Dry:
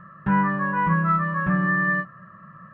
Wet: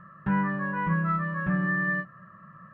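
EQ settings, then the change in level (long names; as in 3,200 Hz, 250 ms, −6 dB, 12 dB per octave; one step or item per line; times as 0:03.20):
dynamic equaliser 1,100 Hz, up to −5 dB, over −36 dBFS, Q 2.3
−4.0 dB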